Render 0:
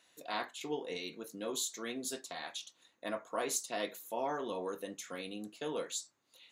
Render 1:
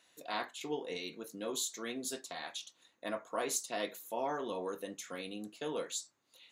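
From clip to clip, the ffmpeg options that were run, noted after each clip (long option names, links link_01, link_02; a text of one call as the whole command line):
ffmpeg -i in.wav -af anull out.wav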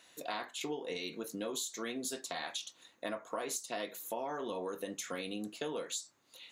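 ffmpeg -i in.wav -af "acompressor=threshold=-42dB:ratio=6,volume=6.5dB" out.wav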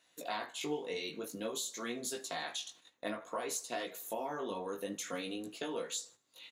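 ffmpeg -i in.wav -af "flanger=delay=16.5:depth=3.9:speed=0.54,aecho=1:1:78|156|234|312:0.0708|0.0382|0.0206|0.0111,agate=range=-9dB:threshold=-59dB:ratio=16:detection=peak,volume=3dB" out.wav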